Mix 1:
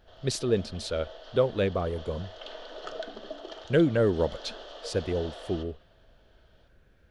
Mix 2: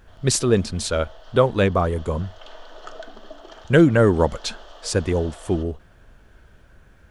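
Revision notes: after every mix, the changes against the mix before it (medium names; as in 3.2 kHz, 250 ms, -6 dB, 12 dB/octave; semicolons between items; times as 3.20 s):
speech +10.0 dB; master: add graphic EQ 500/1000/4000/8000 Hz -5/+5/-5/+7 dB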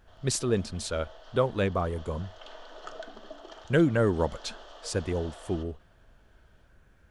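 speech -8.5 dB; background -3.5 dB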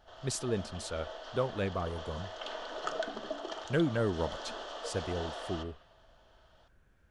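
speech -6.5 dB; background +6.5 dB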